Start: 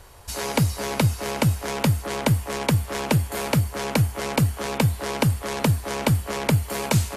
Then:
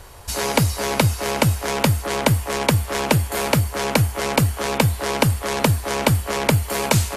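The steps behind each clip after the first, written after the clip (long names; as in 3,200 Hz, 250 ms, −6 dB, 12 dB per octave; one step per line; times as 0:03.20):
dynamic equaliser 160 Hz, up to −5 dB, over −33 dBFS, Q 0.78
level +5.5 dB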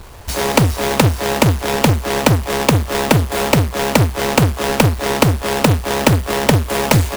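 each half-wave held at its own peak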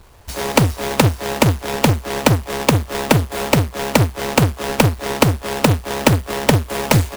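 expander for the loud parts 1.5 to 1, over −27 dBFS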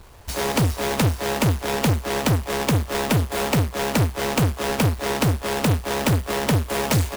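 soft clipping −15.5 dBFS, distortion −8 dB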